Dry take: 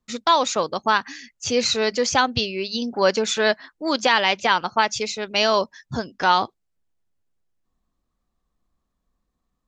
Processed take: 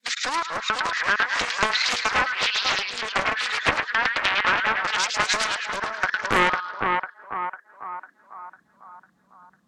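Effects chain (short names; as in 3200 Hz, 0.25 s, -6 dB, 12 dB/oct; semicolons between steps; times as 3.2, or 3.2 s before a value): local time reversal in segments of 0.232 s; treble ducked by the level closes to 1300 Hz, closed at -15.5 dBFS; compressor 6:1, threshold -28 dBFS, peak gain reduction 13.5 dB; high-pass sweep 1600 Hz -> 170 Hz, 6.05–8.68; split-band echo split 1400 Hz, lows 0.5 s, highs 0.107 s, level -3.5 dB; maximiser +16.5 dB; Doppler distortion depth 0.52 ms; gain -7.5 dB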